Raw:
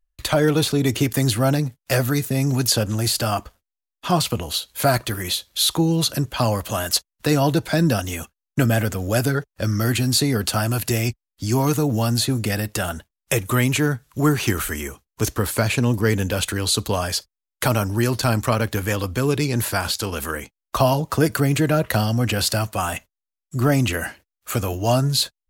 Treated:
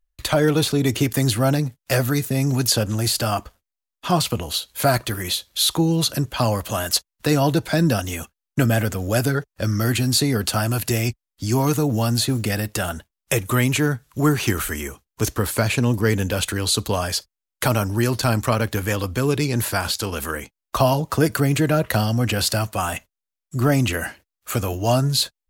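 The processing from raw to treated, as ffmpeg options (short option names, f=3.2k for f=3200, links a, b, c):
-filter_complex "[0:a]asettb=1/sr,asplit=3[a][b][c];[a]atrim=end=12.144[d];[b]atrim=start=12.14:end=12.86,asetpts=PTS-STARTPTS,afade=t=in:d=0.004:c=qsin,afade=t=out:st=0.716:d=0.004:c=qsin,acrusher=bits=8:mode=log:mix=0:aa=0.000001[e];[c]atrim=start=12.856[f];[d][e]acrossfade=d=0.004:c1=hsin:c2=qsin[g];[g][f]acrossfade=d=0.004:c1=qsin:c2=hsin"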